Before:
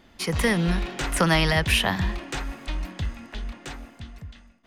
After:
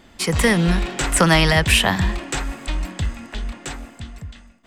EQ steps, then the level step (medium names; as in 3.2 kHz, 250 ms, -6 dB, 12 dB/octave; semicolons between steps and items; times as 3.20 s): peaking EQ 7.8 kHz +11.5 dB 0.21 oct; +5.5 dB